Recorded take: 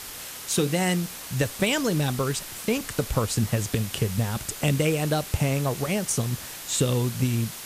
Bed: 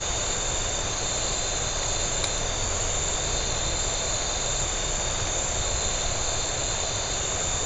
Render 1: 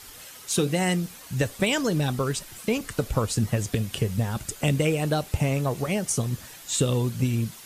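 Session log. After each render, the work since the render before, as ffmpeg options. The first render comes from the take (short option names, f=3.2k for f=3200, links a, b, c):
-af "afftdn=nr=9:nf=-39"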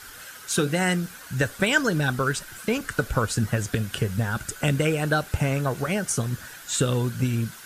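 -af "equalizer=f=1.5k:t=o:w=0.38:g=14.5"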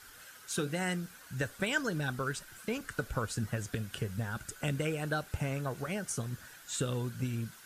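-af "volume=-10.5dB"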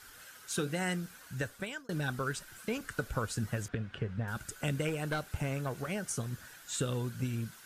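-filter_complex "[0:a]asettb=1/sr,asplit=3[a][b][c];[a]atrim=end=3.684[d];[b]atrim=start=3.68:end=4.28,asetpts=PTS-STARTPTS,afade=t=in:d=0.004:c=qsin,afade=t=out:st=0.596:d=0.004:c=qsin,lowpass=2.5k[e];[c]atrim=start=4.276[f];[d][e]acrossfade=d=0.004:c1=hsin:c2=qsin[g];[g][f]acrossfade=d=0.004:c1=qsin:c2=hsin,asettb=1/sr,asplit=3[h][i][j];[h]atrim=end=4.884[k];[i]atrim=start=4.88:end=6.01,asetpts=PTS-STARTPTS,afade=t=in:d=0.004:c=qsin,afade=t=out:st=1.126:d=0.004:c=qsin,aeval=exprs='clip(val(0),-1,0.0237)':c=same[l];[j]atrim=start=6.006[m];[k][l]acrossfade=d=0.004:c1=hsin:c2=qsin[n];[n][m]acrossfade=d=0.004:c1=qsin:c2=hsin,asplit=2[o][p];[o]atrim=end=1.89,asetpts=PTS-STARTPTS,afade=t=out:st=1.14:d=0.75:c=qsin[q];[p]atrim=start=1.89,asetpts=PTS-STARTPTS,afade=t=in:d=0.004:c=hsin[r];[q][r]concat=n=2:v=0:a=1"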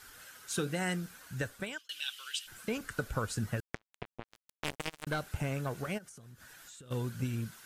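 -filter_complex "[0:a]asplit=3[a][b][c];[a]afade=t=out:st=1.77:d=0.02[d];[b]highpass=f=3k:t=q:w=8.1,afade=t=in:st=1.77:d=0.02,afade=t=out:st=2.46:d=0.02[e];[c]afade=t=in:st=2.46:d=0.02[f];[d][e][f]amix=inputs=3:normalize=0,asettb=1/sr,asplit=3[g][h][i];[g]atrim=end=3.604[j];[h]atrim=start=3.6:end=5.07,asetpts=PTS-STARTPTS,afade=t=in:d=0.004:c=qsin,afade=t=out:st=1.466:d=0.004:c=qsin,acrusher=bits=3:mix=0:aa=0.5[k];[i]atrim=start=5.066[l];[j][k]acrossfade=d=0.004:c1=hsin:c2=qsin[m];[m][l]acrossfade=d=0.004:c1=qsin:c2=hsin,asplit=3[n][o][p];[n]afade=t=out:st=5.97:d=0.02[q];[o]acompressor=threshold=-49dB:ratio=10:attack=3.2:release=140:knee=1:detection=peak,afade=t=in:st=5.97:d=0.02,afade=t=out:st=6.9:d=0.02[r];[p]afade=t=in:st=6.9:d=0.02[s];[q][r][s]amix=inputs=3:normalize=0"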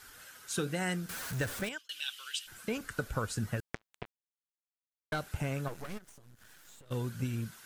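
-filter_complex "[0:a]asettb=1/sr,asplit=3[a][b][c];[a]atrim=end=1.094[d];[b]atrim=start=1.09:end=1.69,asetpts=PTS-STARTPTS,afade=t=in:d=0.004:c=qsin,afade=t=out:st=0.596:d=0.004:c=qsin,aeval=exprs='val(0)+0.5*0.015*sgn(val(0))':c=same[e];[c]atrim=start=1.686[f];[d][e]acrossfade=d=0.004:c1=hsin:c2=qsin[g];[g][f]acrossfade=d=0.004:c1=qsin:c2=hsin,asettb=1/sr,asplit=3[h][i][j];[h]atrim=end=5.684[k];[i]atrim=start=5.68:end=6.91,asetpts=PTS-STARTPTS,afade=t=in:d=0.004:c=qsin,afade=t=out:st=1.226:d=0.004:c=qsin,aeval=exprs='max(val(0),0)':c=same[l];[j]atrim=start=6.906[m];[k][l]acrossfade=d=0.004:c1=hsin:c2=qsin[n];[n][m]acrossfade=d=0.004:c1=qsin:c2=hsin,asplit=3[o][p][q];[o]atrim=end=4.11,asetpts=PTS-STARTPTS,afade=t=out:st=4.106:d=0.004:c=hsin[r];[p]atrim=start=4.11:end=5.12,asetpts=PTS-STARTPTS,volume=0[s];[q]atrim=start=5.12,asetpts=PTS-STARTPTS,afade=t=in:d=0.004:c=hsin[t];[r][s][t]concat=n=3:v=0:a=1"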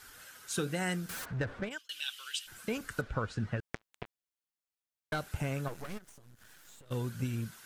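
-filter_complex "[0:a]asplit=3[a][b][c];[a]afade=t=out:st=1.24:d=0.02[d];[b]adynamicsmooth=sensitivity=2.5:basefreq=1.4k,afade=t=in:st=1.24:d=0.02,afade=t=out:st=1.7:d=0.02[e];[c]afade=t=in:st=1.7:d=0.02[f];[d][e][f]amix=inputs=3:normalize=0,asettb=1/sr,asplit=3[g][h][i];[g]atrim=end=3.014[j];[h]atrim=start=3.01:end=3.63,asetpts=PTS-STARTPTS,afade=t=in:d=0.004:c=qsin,afade=t=out:st=0.616:d=0.004:c=qsin,lowpass=3.4k[k];[i]atrim=start=3.626[l];[j][k]acrossfade=d=0.004:c1=hsin:c2=qsin[m];[m][l]acrossfade=d=0.004:c1=qsin:c2=hsin"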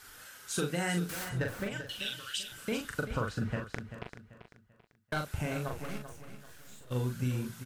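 -filter_complex "[0:a]asplit=2[a][b];[b]adelay=40,volume=-4dB[c];[a][c]amix=inputs=2:normalize=0,aecho=1:1:389|778|1167|1556:0.282|0.093|0.0307|0.0101"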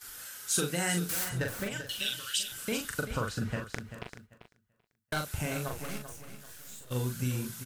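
-af "highshelf=f=4.3k:g=11,agate=range=-11dB:threshold=-52dB:ratio=16:detection=peak"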